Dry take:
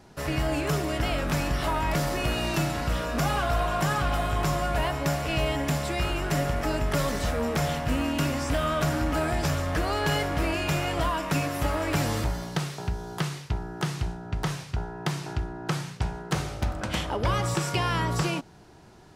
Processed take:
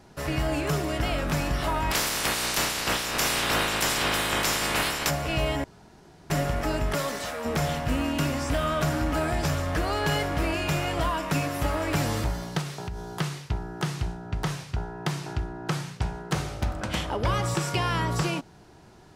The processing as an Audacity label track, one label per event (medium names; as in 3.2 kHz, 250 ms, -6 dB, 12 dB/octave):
1.900000	5.090000	spectral peaks clipped ceiling under each frame's peak by 27 dB
5.640000	6.300000	room tone
6.930000	7.440000	high-pass 240 Hz -> 940 Hz 6 dB/octave
12.610000	13.150000	compression, threshold -29 dBFS